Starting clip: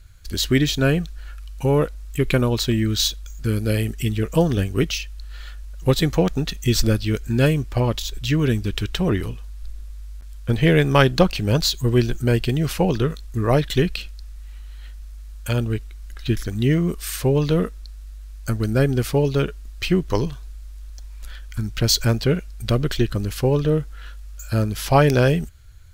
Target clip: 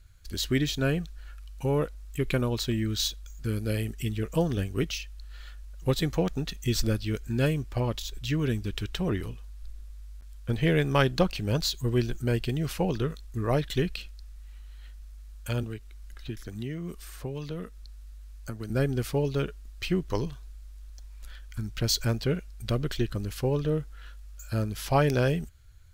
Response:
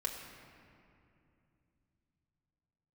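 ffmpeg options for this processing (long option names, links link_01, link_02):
-filter_complex "[0:a]asettb=1/sr,asplit=3[link_01][link_02][link_03];[link_01]atrim=end=15.634[link_04];[link_02]atrim=start=15.63:end=18.7,asetpts=PTS-STARTPTS,afade=type=in:duration=0.004:curve=qsin,afade=type=out:start_time=3.066:duration=0.004:curve=qsin,acrossover=split=210|1300[link_05][link_06][link_07];[link_05]acompressor=threshold=-30dB:ratio=4[link_08];[link_06]acompressor=threshold=-30dB:ratio=4[link_09];[link_07]acompressor=threshold=-40dB:ratio=4[link_10];[link_08][link_09][link_10]amix=inputs=3:normalize=0[link_11];[link_03]atrim=start=18.696[link_12];[link_04][link_11]acrossfade=duration=0.004:curve1=hsin:curve2=qsin[link_13];[link_13][link_12]acrossfade=duration=0.004:curve1=qsin:curve2=hsin,volume=-8dB"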